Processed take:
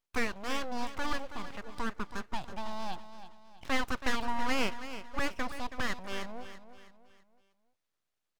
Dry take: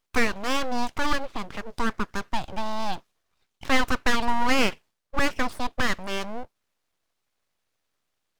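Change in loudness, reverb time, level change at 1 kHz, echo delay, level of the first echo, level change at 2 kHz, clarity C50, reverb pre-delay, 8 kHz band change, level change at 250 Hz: -9.0 dB, no reverb, -8.5 dB, 325 ms, -12.0 dB, -8.5 dB, no reverb, no reverb, -8.5 dB, -8.5 dB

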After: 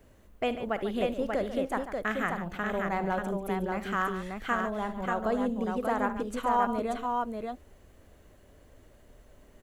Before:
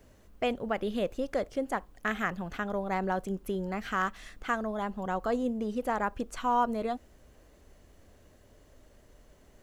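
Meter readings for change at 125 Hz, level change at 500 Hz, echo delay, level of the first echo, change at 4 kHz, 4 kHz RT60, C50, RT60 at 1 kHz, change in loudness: +1.5 dB, +2.0 dB, 52 ms, -15.5 dB, +0.5 dB, no reverb, no reverb, no reverb, +1.5 dB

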